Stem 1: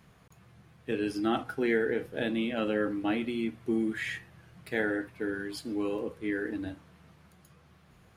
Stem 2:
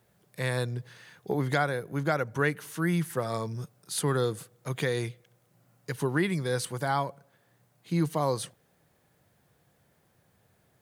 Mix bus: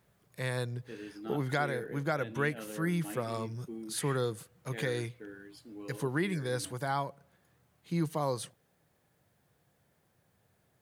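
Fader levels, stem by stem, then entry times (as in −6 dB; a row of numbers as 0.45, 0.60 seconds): −14.0, −4.5 decibels; 0.00, 0.00 seconds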